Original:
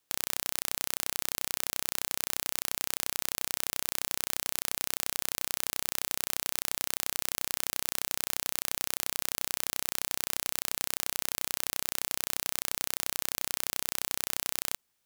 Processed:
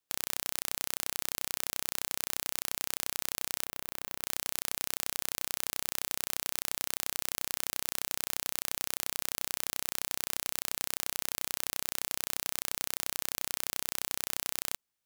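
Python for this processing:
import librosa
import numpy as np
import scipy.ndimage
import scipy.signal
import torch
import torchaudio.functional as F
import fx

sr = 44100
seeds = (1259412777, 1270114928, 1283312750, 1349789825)

y = fx.peak_eq(x, sr, hz=7200.0, db=-8.5, octaves=2.7, at=(3.65, 4.24))
y = fx.upward_expand(y, sr, threshold_db=-47.0, expansion=1.5)
y = F.gain(torch.from_numpy(y), -2.0).numpy()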